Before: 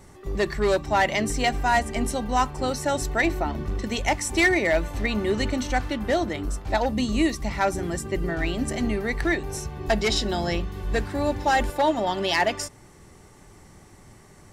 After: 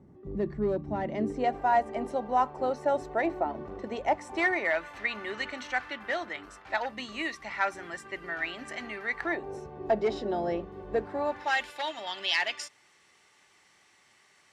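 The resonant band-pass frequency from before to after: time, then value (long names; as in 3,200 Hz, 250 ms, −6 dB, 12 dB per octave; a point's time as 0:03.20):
resonant band-pass, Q 1.2
0:01.00 210 Hz
0:01.60 630 Hz
0:04.16 630 Hz
0:04.87 1,700 Hz
0:09.09 1,700 Hz
0:09.51 510 Hz
0:11.04 510 Hz
0:11.62 2,900 Hz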